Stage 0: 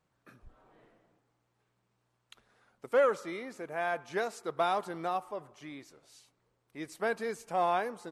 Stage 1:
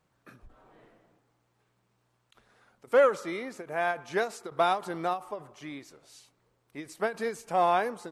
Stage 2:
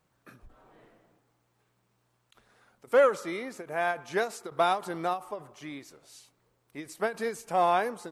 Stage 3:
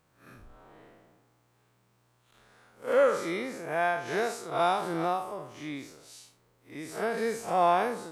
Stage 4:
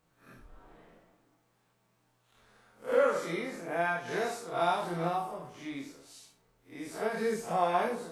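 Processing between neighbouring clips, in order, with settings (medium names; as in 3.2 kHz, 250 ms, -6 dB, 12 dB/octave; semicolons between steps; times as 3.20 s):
endings held to a fixed fall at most 210 dB/s; trim +4.5 dB
treble shelf 10 kHz +6.5 dB
spectral blur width 124 ms; in parallel at -1 dB: peak limiter -25.5 dBFS, peak gain reduction 10 dB
chorus voices 6, 0.25 Hz, delay 26 ms, depth 3.4 ms; reverberation RT60 0.55 s, pre-delay 4 ms, DRR 12 dB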